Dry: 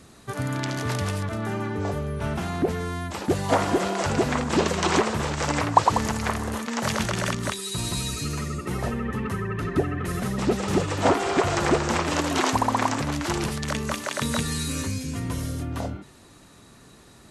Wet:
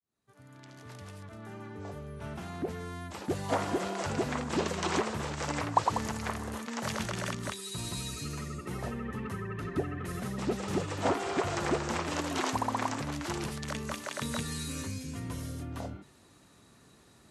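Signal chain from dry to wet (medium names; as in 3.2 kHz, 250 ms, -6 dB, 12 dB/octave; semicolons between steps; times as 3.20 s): fade-in on the opening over 3.52 s; high-pass 53 Hz; trim -8.5 dB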